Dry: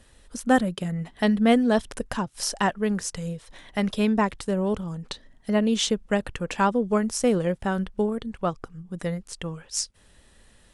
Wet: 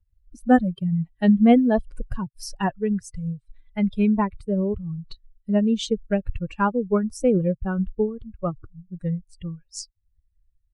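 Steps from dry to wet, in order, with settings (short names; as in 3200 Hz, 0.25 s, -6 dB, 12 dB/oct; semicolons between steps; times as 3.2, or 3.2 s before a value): per-bin expansion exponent 2; tilt -2.5 dB/oct; vibrato 1.4 Hz 41 cents; gain +2 dB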